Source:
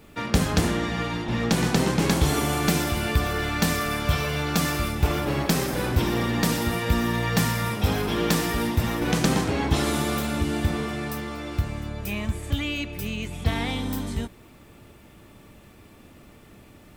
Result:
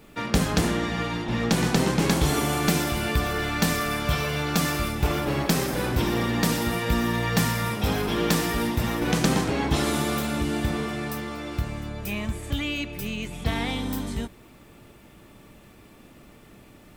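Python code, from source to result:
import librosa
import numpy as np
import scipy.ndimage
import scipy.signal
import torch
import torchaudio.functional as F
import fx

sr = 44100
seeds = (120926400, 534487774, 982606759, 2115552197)

y = fx.peak_eq(x, sr, hz=85.0, db=-12.0, octaves=0.25)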